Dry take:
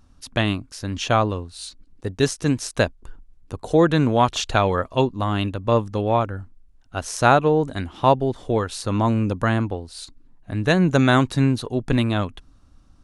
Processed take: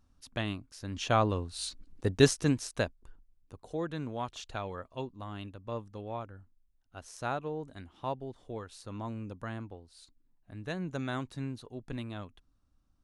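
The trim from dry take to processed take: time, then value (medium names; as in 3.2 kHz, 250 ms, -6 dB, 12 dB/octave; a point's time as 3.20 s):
0.74 s -13 dB
1.58 s -2 dB
2.24 s -2 dB
2.66 s -10 dB
3.73 s -19 dB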